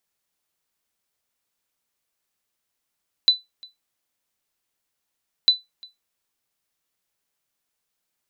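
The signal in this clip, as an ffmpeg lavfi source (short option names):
-f lavfi -i "aevalsrc='0.473*(sin(2*PI*3990*mod(t,2.2))*exp(-6.91*mod(t,2.2)/0.18)+0.0447*sin(2*PI*3990*max(mod(t,2.2)-0.35,0))*exp(-6.91*max(mod(t,2.2)-0.35,0)/0.18))':d=4.4:s=44100"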